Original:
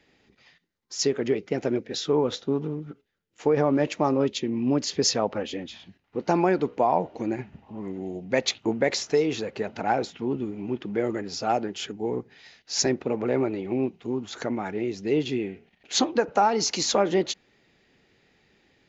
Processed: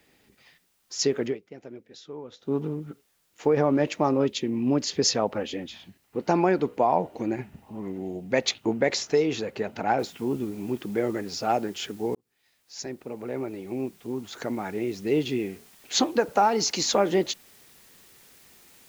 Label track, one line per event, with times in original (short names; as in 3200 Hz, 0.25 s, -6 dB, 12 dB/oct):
1.230000	2.550000	dip -16.5 dB, fades 0.16 s
9.990000	9.990000	noise floor step -70 dB -55 dB
12.150000	15.020000	fade in